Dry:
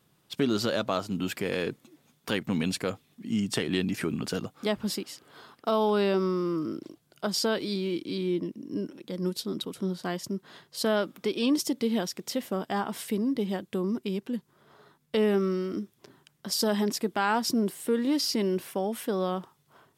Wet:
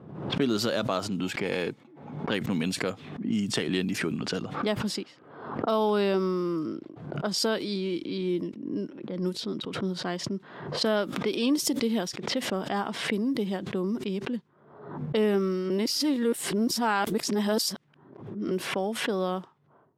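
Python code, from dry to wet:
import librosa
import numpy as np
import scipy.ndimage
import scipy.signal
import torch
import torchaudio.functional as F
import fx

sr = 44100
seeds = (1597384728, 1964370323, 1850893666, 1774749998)

y = fx.small_body(x, sr, hz=(840.0, 2200.0), ring_ms=45, db=9, at=(1.23, 2.3))
y = fx.edit(y, sr, fx.reverse_span(start_s=15.7, length_s=2.81), tone=tone)
y = fx.env_lowpass(y, sr, base_hz=700.0, full_db=-24.5)
y = scipy.signal.sosfilt(scipy.signal.butter(2, 100.0, 'highpass', fs=sr, output='sos'), y)
y = fx.pre_swell(y, sr, db_per_s=65.0)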